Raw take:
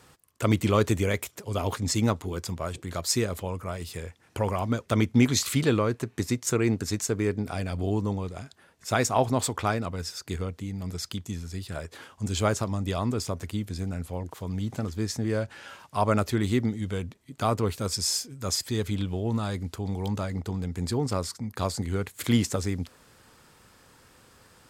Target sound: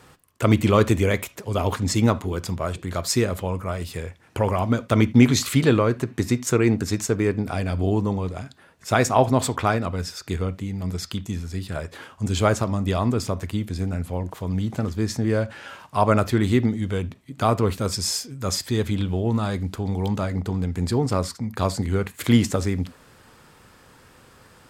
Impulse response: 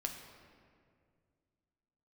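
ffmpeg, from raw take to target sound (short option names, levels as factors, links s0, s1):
-filter_complex "[0:a]asplit=2[s0][s1];[1:a]atrim=start_sample=2205,atrim=end_sample=3969,lowpass=4100[s2];[s1][s2]afir=irnorm=-1:irlink=0,volume=0.596[s3];[s0][s3]amix=inputs=2:normalize=0,volume=1.26"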